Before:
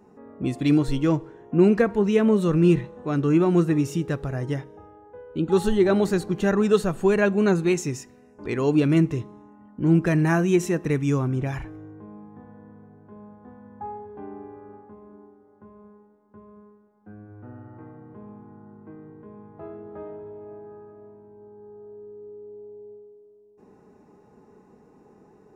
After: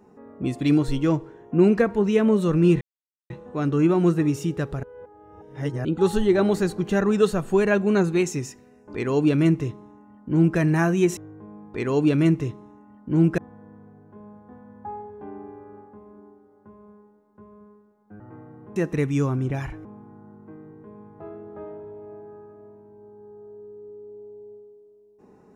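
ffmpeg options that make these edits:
-filter_complex "[0:a]asplit=10[s0][s1][s2][s3][s4][s5][s6][s7][s8][s9];[s0]atrim=end=2.81,asetpts=PTS-STARTPTS,afade=t=out:st=2.806:d=0.004:c=hsin,apad=pad_dur=0.49[s10];[s1]atrim=start=2.81:end=4.342,asetpts=PTS-STARTPTS,afade=t=in:d=0.004:c=hsin[s11];[s2]atrim=start=4.338:end=5.362,asetpts=PTS-STARTPTS,areverse[s12];[s3]atrim=start=5.358:end=10.682[s13];[s4]atrim=start=11.768:end=12.342[s14];[s5]atrim=start=8.448:end=10.092[s15];[s6]atrim=start=12.338:end=17.162[s16];[s7]atrim=start=17.678:end=18.242[s17];[s8]atrim=start=10.678:end=11.772[s18];[s9]atrim=start=18.238[s19];[s10][s11]concat=n=2:v=0:a=1[s20];[s20][s12]acrossfade=d=0.004:c1=hsin:c2=hsin[s21];[s21][s13]acrossfade=d=0.004:c1=hsin:c2=hsin[s22];[s22][s14]acrossfade=d=0.004:c1=hsin:c2=hsin[s23];[s23][s15]acrossfade=d=0.004:c1=hsin:c2=hsin[s24];[s24][s16]acrossfade=d=0.004:c1=hsin:c2=hsin[s25];[s25][s17]acrossfade=d=0.004:c1=hsin:c2=hsin[s26];[s26][s18]acrossfade=d=0.004:c1=hsin:c2=hsin[s27];[s27][s19]acrossfade=d=0.004:c1=hsin:c2=hsin"

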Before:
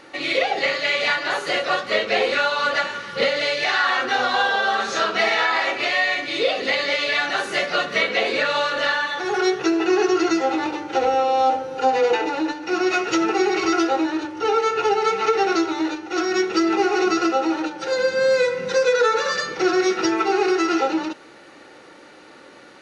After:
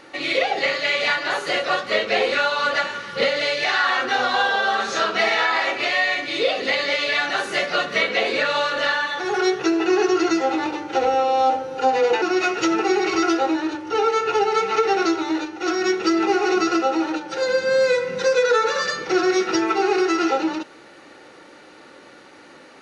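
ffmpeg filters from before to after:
-filter_complex "[0:a]asplit=2[s0][s1];[s0]atrim=end=12.222[s2];[s1]atrim=start=12.718[s3];[s2][s3]acrossfade=d=0.004:c1=hsin:c2=hsin"

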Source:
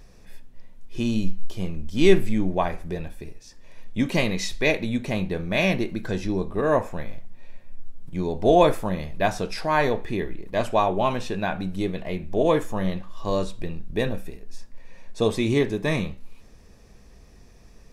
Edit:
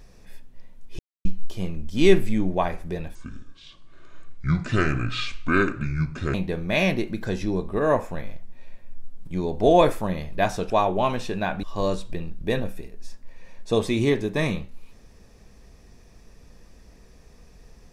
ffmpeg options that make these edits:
-filter_complex "[0:a]asplit=7[s0][s1][s2][s3][s4][s5][s6];[s0]atrim=end=0.99,asetpts=PTS-STARTPTS,afade=t=out:st=0.986:d=0.004:c=hsin[s7];[s1]atrim=start=0.99:end=1.25,asetpts=PTS-STARTPTS,volume=0[s8];[s2]atrim=start=1.25:end=3.154,asetpts=PTS-STARTPTS,afade=t=in:d=0.004:c=hsin[s9];[s3]atrim=start=3.15:end=5.16,asetpts=PTS-STARTPTS,asetrate=27783,aresample=44100[s10];[s4]atrim=start=5.156:end=9.522[s11];[s5]atrim=start=10.708:end=11.642[s12];[s6]atrim=start=13.118[s13];[s7][s8][s9]concat=n=3:v=0:a=1[s14];[s14][s10]acrossfade=d=0.004:c1=hsin:c2=hsin[s15];[s15][s11]acrossfade=d=0.004:c1=hsin:c2=hsin[s16];[s16][s12]acrossfade=d=0.004:c1=hsin:c2=hsin[s17];[s17][s13]acrossfade=d=0.004:c1=hsin:c2=hsin"

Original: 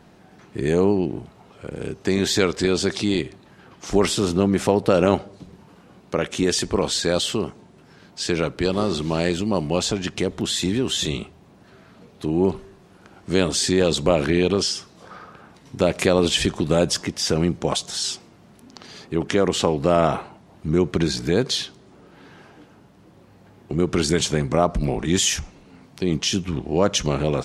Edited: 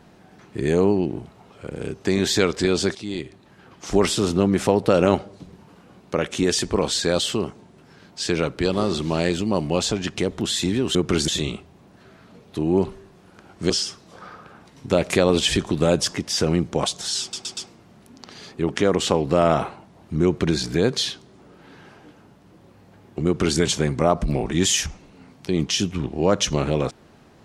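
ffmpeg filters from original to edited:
-filter_complex "[0:a]asplit=8[s0][s1][s2][s3][s4][s5][s6][s7];[s0]atrim=end=2.95,asetpts=PTS-STARTPTS,afade=t=out:st=2.946:d=0.004:c=hsin:silence=0.211349[s8];[s1]atrim=start=2.95:end=10.952,asetpts=PTS-STARTPTS,afade=t=in:d=1.08:c=qsin:silence=0.211349[s9];[s2]atrim=start=23.788:end=24.122[s10];[s3]atrim=start=10.948:end=13.372[s11];[s4]atrim=start=14.588:end=18.222[s12];[s5]atrim=start=18.098:end=18.222[s13];[s6]atrim=start=18.098:end=18.222[s14];[s7]atrim=start=18.098[s15];[s8][s9]concat=n=2:v=0:a=1[s16];[s16][s10]acrossfade=d=0.004:c1=hsin:c2=hsin[s17];[s17][s11]acrossfade=d=0.004:c1=hsin:c2=hsin[s18];[s18][s12]acrossfade=d=0.004:c1=hsin:c2=hsin[s19];[s19][s13]acrossfade=d=0.004:c1=hsin:c2=hsin[s20];[s20][s14]acrossfade=d=0.004:c1=hsin:c2=hsin[s21];[s21][s15]acrossfade=d=0.004:c1=hsin:c2=hsin"

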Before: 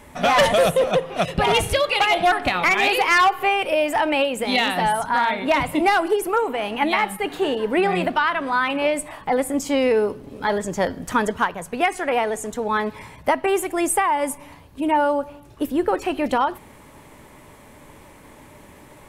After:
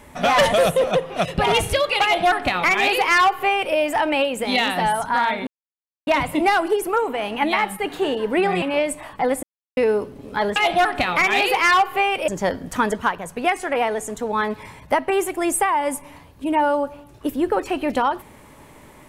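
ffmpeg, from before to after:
-filter_complex "[0:a]asplit=7[s0][s1][s2][s3][s4][s5][s6];[s0]atrim=end=5.47,asetpts=PTS-STARTPTS,afade=t=out:st=5.466:d=0.004:c=hsin,apad=pad_dur=0.6[s7];[s1]atrim=start=5.47:end=8.022,asetpts=PTS-STARTPTS,afade=t=in:d=0.004:c=hsin[s8];[s2]atrim=start=8.698:end=9.51,asetpts=PTS-STARTPTS,afade=t=out:st=0.808:d=0.004:c=hsin[s9];[s3]atrim=start=9.51:end=9.85,asetpts=PTS-STARTPTS,volume=0[s10];[s4]atrim=start=9.85:end=10.642,asetpts=PTS-STARTPTS,afade=t=in:d=0.004:c=hsin[s11];[s5]atrim=start=2.028:end=3.752[s12];[s6]atrim=start=10.638[s13];[s7][s8]concat=n=2:v=0:a=1[s14];[s9][s10][s11]concat=n=3:v=0:a=1[s15];[s14][s15]acrossfade=d=0.004:c1=hsin:c2=hsin[s16];[s16][s12]acrossfade=d=0.004:c1=hsin:c2=hsin[s17];[s17][s13]acrossfade=d=0.004:c1=hsin:c2=hsin"

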